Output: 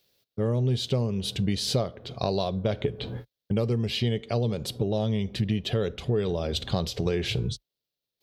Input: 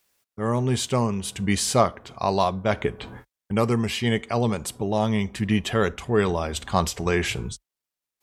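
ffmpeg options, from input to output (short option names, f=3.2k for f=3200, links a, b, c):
-af "equalizer=f=125:t=o:w=1:g=9,equalizer=f=500:t=o:w=1:g=8,equalizer=f=1k:t=o:w=1:g=-9,equalizer=f=2k:t=o:w=1:g=-5,equalizer=f=4k:t=o:w=1:g=11,equalizer=f=8k:t=o:w=1:g=-11,acompressor=threshold=-23dB:ratio=5"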